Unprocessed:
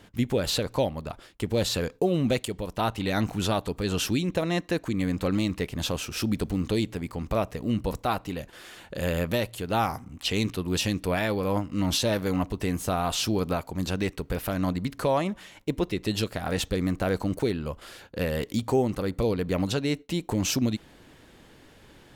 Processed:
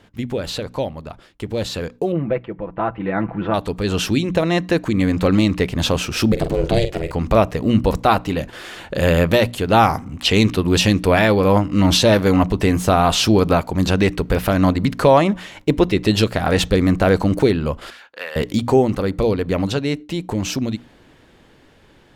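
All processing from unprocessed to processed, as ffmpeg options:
-filter_complex "[0:a]asettb=1/sr,asplit=3[s0][s1][s2];[s0]atrim=end=2.124[s3];[s1]atrim=start=2.12:end=3.54,asetpts=PTS-STARTPTS,afade=t=in:d=0.004:c=qsin,afade=t=out:st=1.416:d=0.004:c=qsin,lowpass=f=2000:w=0.5412,lowpass=f=2000:w=1.3066,lowshelf=f=150:g=-5,aecho=1:1:6:0.57,atrim=end_sample=62622[s4];[s2]atrim=start=3.536[s5];[s3][s4]acrossfade=d=0.004:c1=hsin:c2=qsin[s6];[s6][s5]acrossfade=d=0.004:c1=qsin:c2=hsin,asettb=1/sr,asplit=3[s7][s8][s9];[s7]atrim=end=6.324[s10];[s8]atrim=start=6.32:end=7.12,asetpts=PTS-STARTPTS,afade=t=in:d=0.004:c=qsin,afade=t=out:st=0.796:d=0.004:c=qsin,asplit=2[s11][s12];[s12]adelay=46,volume=0.335[s13];[s11][s13]amix=inputs=2:normalize=0,atrim=end_sample=35280,aeval=exprs='val(0)*sin(2*PI*240*n/s)':c=same[s14];[s9]atrim=start=7.116[s15];[s10][s14]acrossfade=d=0.004:c1=hsin:c2=qsin[s16];[s16][s15]acrossfade=d=0.004:c1=qsin:c2=hsin,asettb=1/sr,asplit=3[s17][s18][s19];[s17]atrim=end=17.904[s20];[s18]atrim=start=17.9:end=18.36,asetpts=PTS-STARTPTS,afade=t=in:d=0.004:c=qsin,afade=t=out:st=0.456:d=0.004:c=qsin,highpass=1200,highshelf=f=3400:g=-10.5[s21];[s19]atrim=start=18.356[s22];[s20][s21]acrossfade=d=0.004:c1=hsin:c2=qsin[s23];[s23][s22]acrossfade=d=0.004:c1=qsin:c2=hsin,highshelf=f=6900:g=-9.5,bandreject=f=60:t=h:w=6,bandreject=f=120:t=h:w=6,bandreject=f=180:t=h:w=6,bandreject=f=240:t=h:w=6,bandreject=f=300:t=h:w=6,dynaudnorm=f=750:g=11:m=3.76,volume=1.26"

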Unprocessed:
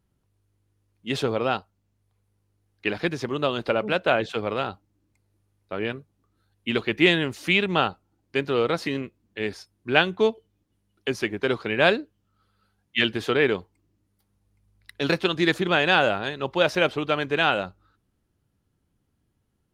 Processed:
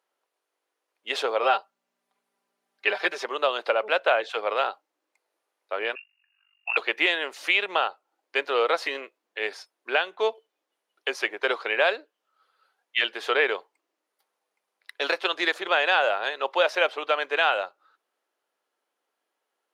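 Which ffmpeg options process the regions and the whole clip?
-filter_complex "[0:a]asettb=1/sr,asplit=3[s0][s1][s2];[s0]atrim=end=1.424[s3];[s1]atrim=start=1.42:end=3.24,asetpts=PTS-STARTPTS,afade=t=in:d=0.004:c=qsin,afade=t=out:st=1.816:d=0.004:c=qsin,aeval=exprs='val(0)+0.00126*(sin(2*PI*60*n/s)+sin(2*PI*2*60*n/s)/2+sin(2*PI*3*60*n/s)/3+sin(2*PI*4*60*n/s)/4+sin(2*PI*5*60*n/s)/5)':c=same,aecho=1:1:5.1:0.71,atrim=end_sample=80262[s4];[s2]atrim=start=3.236[s5];[s3][s4]acrossfade=d=0.004:c1=hsin:c2=qsin[s6];[s6][s5]acrossfade=d=0.004:c1=qsin:c2=hsin,asettb=1/sr,asplit=3[s7][s8][s9];[s7]atrim=end=5.954[s10];[s8]atrim=start=5.95:end=6.77,asetpts=PTS-STARTPTS,afade=t=in:d=0.004:c=qsin,afade=t=out:st=0.816:d=0.004:c=qsin,lowpass=f=2500:t=q:w=0.5098,lowpass=f=2500:t=q:w=0.6013,lowpass=f=2500:t=q:w=0.9,lowpass=f=2500:t=q:w=2.563,afreqshift=-2900,tremolo=f=48:d=0.788,highpass=f=810:w=0.5412,highpass=f=810:w=1.3066[s11];[s9]atrim=start=6.766[s12];[s10][s11]acrossfade=d=0.004:c1=hsin:c2=qsin[s13];[s13][s12]acrossfade=d=0.004:c1=qsin:c2=hsin,highpass=f=520:w=0.5412,highpass=f=520:w=1.3066,highshelf=f=4800:g=-8,alimiter=limit=0.211:level=0:latency=1:release=368,volume=1.68"

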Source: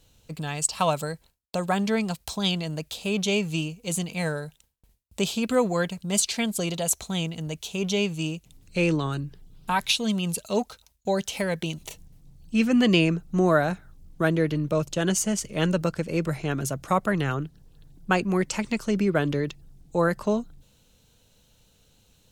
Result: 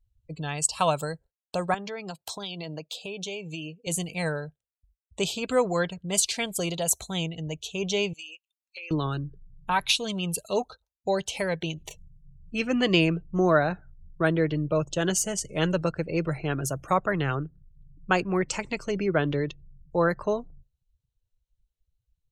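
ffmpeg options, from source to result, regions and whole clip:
-filter_complex "[0:a]asettb=1/sr,asplit=3[s0][s1][s2];[s0]atrim=end=1.744[s3];[s1]atrim=start=1.74:end=3.87,asetpts=PTS-STARTPTS,afade=t=in:d=0.004:c=qsin,afade=t=out:st=2.126:d=0.004:c=qsin,highpass=190,acompressor=threshold=0.0355:ratio=8:attack=3.2:release=140:knee=1:detection=peak[s4];[s2]atrim=start=3.866[s5];[s3][s4]acrossfade=d=0.004:c1=hsin:c2=qsin[s6];[s6][s5]acrossfade=d=0.004:c1=qsin:c2=hsin,asettb=1/sr,asplit=3[s7][s8][s9];[s7]atrim=end=8.134[s10];[s8]atrim=start=8.13:end=8.91,asetpts=PTS-STARTPTS,afade=t=in:d=0.004:c=qsin,afade=t=out:st=0.776:d=0.004:c=qsin,highpass=1200,acompressor=threshold=0.0178:ratio=12:attack=3.2:release=140:knee=1:detection=peak[s11];[s9]atrim=start=8.906[s12];[s10][s11]acrossfade=d=0.004:c1=hsin:c2=qsin[s13];[s13][s12]acrossfade=d=0.004:c1=qsin:c2=hsin,afftdn=nr=34:nf=-44,equalizer=f=220:w=4.3:g=-11"

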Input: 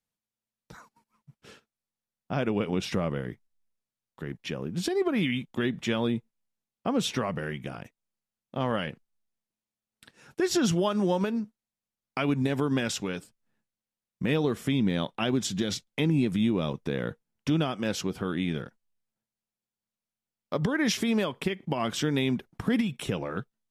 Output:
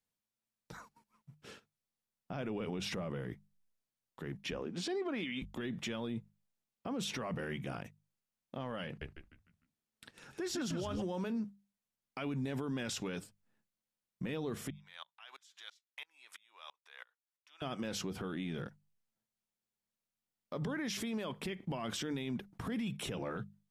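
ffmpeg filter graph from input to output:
-filter_complex "[0:a]asettb=1/sr,asplit=3[s0][s1][s2];[s0]atrim=end=4.514[s3];[s1]atrim=start=4.51:end=5.42,asetpts=PTS-STARTPTS,afade=t=in:d=0.004:c=qsin,afade=t=out:st=0.906:d=0.004:c=qsin,highpass=280,lowpass=6700,aeval=exprs='val(0)+0.01*(sin(2*PI*50*n/s)+sin(2*PI*2*50*n/s)/2+sin(2*PI*3*50*n/s)/3+sin(2*PI*4*50*n/s)/4+sin(2*PI*5*50*n/s)/5)':c=same[s4];[s2]atrim=start=5.416[s5];[s3][s4]acrossfade=d=0.004:c1=hsin:c2=qsin[s6];[s6][s5]acrossfade=d=0.004:c1=qsin:c2=hsin,asettb=1/sr,asplit=3[s7][s8][s9];[s7]atrim=end=8.864[s10];[s8]atrim=start=8.86:end=11.02,asetpts=PTS-STARTPTS,afade=t=in:d=0.004:c=qsin,afade=t=out:st=2.156:d=0.004:c=qsin,highshelf=f=11000:g=-3.5,asplit=6[s11][s12][s13][s14][s15][s16];[s12]adelay=151,afreqshift=-79,volume=0.562[s17];[s13]adelay=302,afreqshift=-158,volume=0.209[s18];[s14]adelay=453,afreqshift=-237,volume=0.0767[s19];[s15]adelay=604,afreqshift=-316,volume=0.0285[s20];[s16]adelay=755,afreqshift=-395,volume=0.0106[s21];[s11][s17][s18][s19][s20][s21]amix=inputs=6:normalize=0,atrim=end_sample=95256[s22];[s9]atrim=start=11.016[s23];[s10][s22]acrossfade=d=0.004:c1=hsin:c2=qsin[s24];[s24][s23]acrossfade=d=0.004:c1=qsin:c2=hsin,asettb=1/sr,asplit=3[s25][s26][s27];[s25]atrim=end=14.704[s28];[s26]atrim=start=14.7:end=17.62,asetpts=PTS-STARTPTS,afade=t=in:d=0.004:c=qsin,afade=t=out:st=2.916:d=0.004:c=qsin,highpass=f=940:w=0.5412,highpass=f=940:w=1.3066,acompressor=threshold=0.00631:ratio=2:attack=3.2:release=140:knee=1:detection=peak,aeval=exprs='val(0)*pow(10,-29*if(lt(mod(-3*n/s,1),2*abs(-3)/1000),1-mod(-3*n/s,1)/(2*abs(-3)/1000),(mod(-3*n/s,1)-2*abs(-3)/1000)/(1-2*abs(-3)/1000))/20)':c=same[s29];[s27]atrim=start=17.616[s30];[s28][s29]acrossfade=d=0.004:c1=hsin:c2=qsin[s31];[s31][s30]acrossfade=d=0.004:c1=qsin:c2=hsin,bandreject=f=50:t=h:w=6,bandreject=f=100:t=h:w=6,bandreject=f=150:t=h:w=6,bandreject=f=200:t=h:w=6,acompressor=threshold=0.0398:ratio=2.5,alimiter=level_in=1.78:limit=0.0631:level=0:latency=1:release=11,volume=0.562,volume=0.841"

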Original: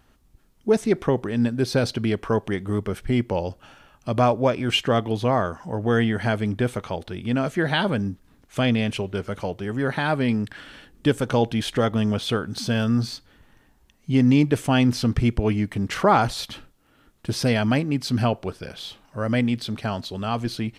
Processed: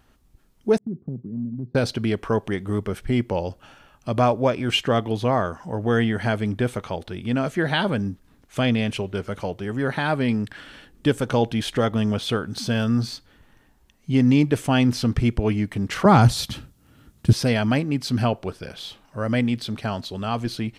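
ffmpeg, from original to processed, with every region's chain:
-filter_complex "[0:a]asettb=1/sr,asplit=3[s0][s1][s2];[s0]atrim=end=0.784[s3];[s1]atrim=start=0.78:end=1.75,asetpts=PTS-STARTPTS,afade=t=in:d=0.004:c=qsin,afade=t=out:st=0.966:d=0.004:c=qsin,agate=range=0.0224:threshold=0.0224:ratio=3:release=100:detection=peak,asuperpass=centerf=170:order=4:qfactor=1.3,acompressor=threshold=0.0501:ratio=3:attack=3.2:release=140:knee=1:detection=peak[s4];[s2]atrim=start=1.746[s5];[s3][s4]acrossfade=d=0.004:c1=hsin:c2=qsin[s6];[s6][s5]acrossfade=d=0.004:c1=qsin:c2=hsin,asettb=1/sr,asplit=3[s7][s8][s9];[s7]atrim=end=16.054[s10];[s8]atrim=start=16.05:end=17.33,asetpts=PTS-STARTPTS,afade=t=in:d=0.004:c=qsin,afade=t=out:st=1.276:d=0.004:c=qsin,highpass=60,bass=f=250:g=14,treble=f=4000:g=6[s11];[s9]atrim=start=17.326[s12];[s10][s11]acrossfade=d=0.004:c1=hsin:c2=qsin[s13];[s13][s12]acrossfade=d=0.004:c1=qsin:c2=hsin"

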